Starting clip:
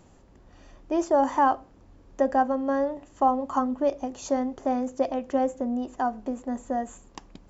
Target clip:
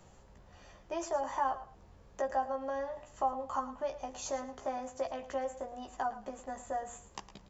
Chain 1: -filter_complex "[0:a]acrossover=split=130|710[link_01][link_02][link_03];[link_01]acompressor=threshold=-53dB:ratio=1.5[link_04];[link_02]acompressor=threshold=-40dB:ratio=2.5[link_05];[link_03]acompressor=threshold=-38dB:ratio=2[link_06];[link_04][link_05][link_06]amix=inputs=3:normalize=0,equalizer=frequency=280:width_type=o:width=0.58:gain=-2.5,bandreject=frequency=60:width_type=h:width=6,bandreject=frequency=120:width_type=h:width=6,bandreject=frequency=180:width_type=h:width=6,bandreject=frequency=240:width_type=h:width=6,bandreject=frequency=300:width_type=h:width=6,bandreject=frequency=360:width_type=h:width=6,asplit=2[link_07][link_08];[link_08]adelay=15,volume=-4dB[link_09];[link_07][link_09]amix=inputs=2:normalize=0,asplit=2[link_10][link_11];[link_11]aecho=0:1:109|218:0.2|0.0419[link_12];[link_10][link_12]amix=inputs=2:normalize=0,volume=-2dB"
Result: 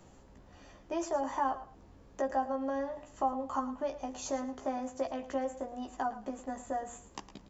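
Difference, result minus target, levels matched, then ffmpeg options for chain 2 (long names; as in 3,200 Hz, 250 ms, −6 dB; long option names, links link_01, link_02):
250 Hz band +6.5 dB
-filter_complex "[0:a]acrossover=split=130|710[link_01][link_02][link_03];[link_01]acompressor=threshold=-53dB:ratio=1.5[link_04];[link_02]acompressor=threshold=-40dB:ratio=2.5[link_05];[link_03]acompressor=threshold=-38dB:ratio=2[link_06];[link_04][link_05][link_06]amix=inputs=3:normalize=0,equalizer=frequency=280:width_type=o:width=0.58:gain=-12.5,bandreject=frequency=60:width_type=h:width=6,bandreject=frequency=120:width_type=h:width=6,bandreject=frequency=180:width_type=h:width=6,bandreject=frequency=240:width_type=h:width=6,bandreject=frequency=300:width_type=h:width=6,bandreject=frequency=360:width_type=h:width=6,asplit=2[link_07][link_08];[link_08]adelay=15,volume=-4dB[link_09];[link_07][link_09]amix=inputs=2:normalize=0,asplit=2[link_10][link_11];[link_11]aecho=0:1:109|218:0.2|0.0419[link_12];[link_10][link_12]amix=inputs=2:normalize=0,volume=-2dB"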